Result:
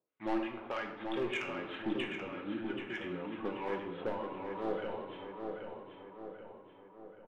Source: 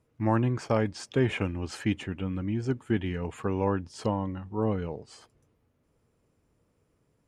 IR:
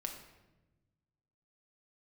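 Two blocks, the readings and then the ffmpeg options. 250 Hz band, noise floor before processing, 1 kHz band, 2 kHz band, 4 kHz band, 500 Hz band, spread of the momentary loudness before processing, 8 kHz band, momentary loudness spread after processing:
-9.0 dB, -72 dBFS, -5.5 dB, -2.5 dB, -3.0 dB, -6.5 dB, 7 LU, under -15 dB, 14 LU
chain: -filter_complex "[0:a]agate=range=-15dB:threshold=-56dB:ratio=16:detection=peak,highpass=420,asplit=2[a][b];[b]acompressor=threshold=-45dB:ratio=5,volume=-1.5dB[c];[a][c]amix=inputs=2:normalize=0,acrossover=split=990[d][e];[d]aeval=exprs='val(0)*(1-1/2+1/2*cos(2*PI*3.2*n/s))':c=same[f];[e]aeval=exprs='val(0)*(1-1/2-1/2*cos(2*PI*3.2*n/s))':c=same[g];[f][g]amix=inputs=2:normalize=0,aresample=8000,acrusher=bits=5:mode=log:mix=0:aa=0.000001,aresample=44100,volume=27.5dB,asoftclip=hard,volume=-27.5dB,aphaser=in_gain=1:out_gain=1:delay=3.7:decay=0.28:speed=1:type=sinusoidal,asoftclip=type=tanh:threshold=-27.5dB,asplit=2[h][i];[i]adelay=782,lowpass=f=3.1k:p=1,volume=-5dB,asplit=2[j][k];[k]adelay=782,lowpass=f=3.1k:p=1,volume=0.53,asplit=2[l][m];[m]adelay=782,lowpass=f=3.1k:p=1,volume=0.53,asplit=2[n][o];[o]adelay=782,lowpass=f=3.1k:p=1,volume=0.53,asplit=2[p][q];[q]adelay=782,lowpass=f=3.1k:p=1,volume=0.53,asplit=2[r][s];[s]adelay=782,lowpass=f=3.1k:p=1,volume=0.53,asplit=2[t][u];[u]adelay=782,lowpass=f=3.1k:p=1,volume=0.53[v];[h][j][l][n][p][r][t][v]amix=inputs=8:normalize=0[w];[1:a]atrim=start_sample=2205[x];[w][x]afir=irnorm=-1:irlink=0,volume=1dB"

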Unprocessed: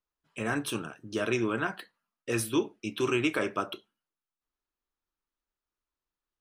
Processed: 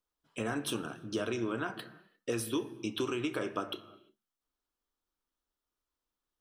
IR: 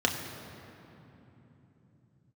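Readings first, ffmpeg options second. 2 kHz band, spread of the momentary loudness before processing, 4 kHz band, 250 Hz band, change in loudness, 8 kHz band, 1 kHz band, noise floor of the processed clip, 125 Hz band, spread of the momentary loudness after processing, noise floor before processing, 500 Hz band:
-7.5 dB, 13 LU, -2.0 dB, -4.0 dB, -5.0 dB, -4.0 dB, -5.0 dB, under -85 dBFS, -5.0 dB, 10 LU, under -85 dBFS, -4.5 dB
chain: -filter_complex "[0:a]acompressor=threshold=-32dB:ratio=6,asplit=2[a][b];[1:a]atrim=start_sample=2205,afade=t=out:st=0.41:d=0.01,atrim=end_sample=18522[c];[b][c]afir=irnorm=-1:irlink=0,volume=-19dB[d];[a][d]amix=inputs=2:normalize=0"

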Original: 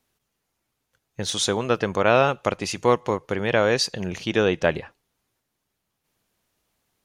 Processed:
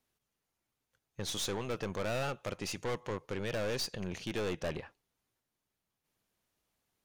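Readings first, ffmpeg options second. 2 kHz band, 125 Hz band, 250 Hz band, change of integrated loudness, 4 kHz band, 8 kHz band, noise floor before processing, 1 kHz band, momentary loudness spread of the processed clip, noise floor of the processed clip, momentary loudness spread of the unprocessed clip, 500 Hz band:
-15.5 dB, -10.5 dB, -13.5 dB, -14.5 dB, -12.0 dB, -11.0 dB, -79 dBFS, -17.5 dB, 5 LU, under -85 dBFS, 8 LU, -15.5 dB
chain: -af "aeval=exprs='(tanh(17.8*val(0)+0.5)-tanh(0.5))/17.8':c=same,volume=-6.5dB"

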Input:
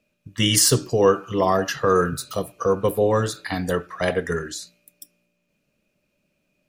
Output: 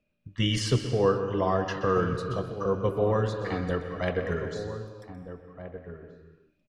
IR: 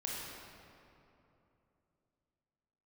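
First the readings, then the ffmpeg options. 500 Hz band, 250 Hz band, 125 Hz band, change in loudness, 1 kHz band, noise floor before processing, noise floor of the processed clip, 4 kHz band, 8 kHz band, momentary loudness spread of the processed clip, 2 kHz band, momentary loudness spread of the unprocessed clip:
-6.0 dB, -4.5 dB, -2.0 dB, -6.5 dB, -6.5 dB, -73 dBFS, -72 dBFS, -9.5 dB, under -15 dB, 18 LU, -7.0 dB, 12 LU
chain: -filter_complex "[0:a]lowpass=3.8k,lowshelf=f=110:g=10,asplit=2[a][b];[b]adelay=1574,volume=-11dB,highshelf=f=4k:g=-35.4[c];[a][c]amix=inputs=2:normalize=0,asplit=2[d][e];[1:a]atrim=start_sample=2205,afade=t=out:st=0.43:d=0.01,atrim=end_sample=19404,adelay=126[f];[e][f]afir=irnorm=-1:irlink=0,volume=-9dB[g];[d][g]amix=inputs=2:normalize=0,volume=-7.5dB"

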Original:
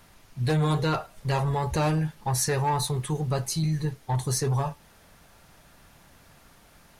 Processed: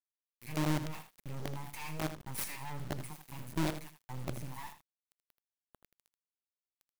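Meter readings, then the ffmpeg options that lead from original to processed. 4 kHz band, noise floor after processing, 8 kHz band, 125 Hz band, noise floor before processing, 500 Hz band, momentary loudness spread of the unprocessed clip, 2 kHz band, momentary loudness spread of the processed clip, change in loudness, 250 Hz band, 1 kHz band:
-12.0 dB, under -85 dBFS, -14.5 dB, -15.0 dB, -56 dBFS, -15.0 dB, 5 LU, -8.5 dB, 13 LU, -12.5 dB, -9.0 dB, -14.5 dB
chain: -filter_complex "[0:a]aemphasis=mode=production:type=75kf,bandreject=f=60:t=h:w=6,bandreject=f=120:t=h:w=6,bandreject=f=180:t=h:w=6,bandreject=f=240:t=h:w=6,bandreject=f=300:t=h:w=6,bandreject=f=360:t=h:w=6,bandreject=f=420:t=h:w=6,bandreject=f=480:t=h:w=6,acrossover=split=160|1700[a][b][c];[a]acompressor=threshold=-38dB:ratio=8[d];[c]acrusher=bits=3:mode=log:mix=0:aa=0.000001[e];[d][b][e]amix=inputs=3:normalize=0,acrossover=split=680[f][g];[f]aeval=exprs='val(0)*(1-1/2+1/2*cos(2*PI*1.4*n/s))':c=same[h];[g]aeval=exprs='val(0)*(1-1/2-1/2*cos(2*PI*1.4*n/s))':c=same[i];[h][i]amix=inputs=2:normalize=0,firequalizer=gain_entry='entry(110,0);entry(200,9);entry(340,-30);entry(970,-1);entry(1400,-26);entry(2200,5);entry(3500,-23);entry(14000,-8)':delay=0.05:min_phase=1,acrusher=bits=5:dc=4:mix=0:aa=0.000001,aeval=exprs='0.133*(cos(1*acos(clip(val(0)/0.133,-1,1)))-cos(1*PI/2))+0.0531*(cos(4*acos(clip(val(0)/0.133,-1,1)))-cos(4*PI/2))+0.0422*(cos(5*acos(clip(val(0)/0.133,-1,1)))-cos(5*PI/2))':c=same,aecho=1:1:80:0.282,volume=-8dB"

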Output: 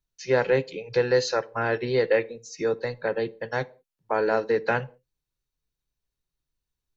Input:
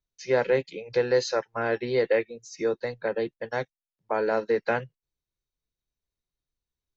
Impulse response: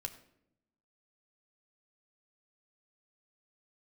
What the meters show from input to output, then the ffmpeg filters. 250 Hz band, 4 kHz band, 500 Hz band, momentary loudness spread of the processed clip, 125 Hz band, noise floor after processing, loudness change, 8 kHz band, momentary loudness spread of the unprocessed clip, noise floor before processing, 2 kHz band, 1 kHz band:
+1.0 dB, +2.5 dB, +1.0 dB, 8 LU, +5.0 dB, under -85 dBFS, +1.5 dB, n/a, 8 LU, under -85 dBFS, +2.5 dB, +2.0 dB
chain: -filter_complex "[0:a]asplit=2[a][b];[1:a]atrim=start_sample=2205,afade=t=out:st=0.39:d=0.01,atrim=end_sample=17640,asetrate=74970,aresample=44100[c];[b][c]afir=irnorm=-1:irlink=0,volume=-1dB[d];[a][d]amix=inputs=2:normalize=0"

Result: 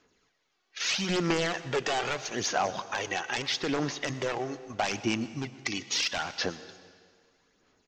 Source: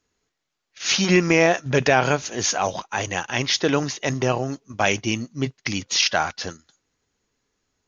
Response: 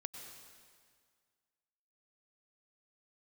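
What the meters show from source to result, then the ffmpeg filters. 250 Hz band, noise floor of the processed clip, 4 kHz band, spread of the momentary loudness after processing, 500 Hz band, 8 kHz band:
-9.0 dB, -75 dBFS, -6.5 dB, 7 LU, -10.0 dB, n/a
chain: -filter_complex "[0:a]lowpass=5.4k,equalizer=f=83:t=o:w=0.99:g=-4,aresample=16000,aeval=exprs='0.178*(abs(mod(val(0)/0.178+3,4)-2)-1)':c=same,aresample=44100,acompressor=threshold=-38dB:ratio=3,lowshelf=f=120:g=-10.5,aphaser=in_gain=1:out_gain=1:delay=2.7:decay=0.48:speed=0.78:type=sinusoidal,asplit=2[a][b];[b]adelay=120,highpass=300,lowpass=3.4k,asoftclip=type=hard:threshold=-29.5dB,volume=-21dB[c];[a][c]amix=inputs=2:normalize=0,asplit=2[d][e];[1:a]atrim=start_sample=2205[f];[e][f]afir=irnorm=-1:irlink=0,volume=-4dB[g];[d][g]amix=inputs=2:normalize=0,volume=2.5dB"

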